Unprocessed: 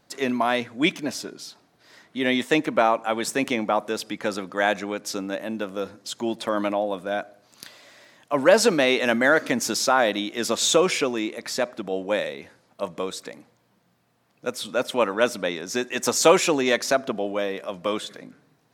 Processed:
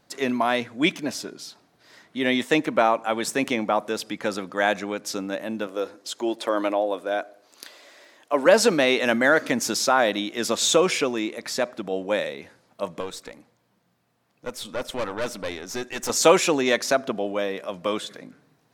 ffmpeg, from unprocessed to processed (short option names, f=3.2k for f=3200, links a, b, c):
-filter_complex "[0:a]asettb=1/sr,asplit=3[a][b][c];[a]atrim=end=5.674[d];[b]atrim=start=5.67:end=8.46,asetpts=PTS-STARTPTS,afade=t=in:d=0.004:c=qsin,afade=t=out:st=2.786:d=0.004:c=qsin,lowshelf=f=240:t=q:w=1.5:g=-11[e];[c]atrim=start=8.456[f];[d][e]acrossfade=d=0.004:c1=hsin:c2=qsin[g];[g][f]acrossfade=d=0.004:c1=qsin:c2=hsin,asettb=1/sr,asplit=3[h][i][j];[h]atrim=end=13.004[k];[i]atrim=start=13:end=16.1,asetpts=PTS-STARTPTS,afade=t=in:d=0.004:c=qsin,afade=t=out:st=3.096:d=0.004:c=qsin,aeval=exprs='(tanh(14.1*val(0)+0.6)-tanh(0.6))/14.1':c=same[l];[j]atrim=start=16.096[m];[k][l]acrossfade=d=0.004:c1=hsin:c2=qsin[n];[n][m]acrossfade=d=0.004:c1=qsin:c2=hsin"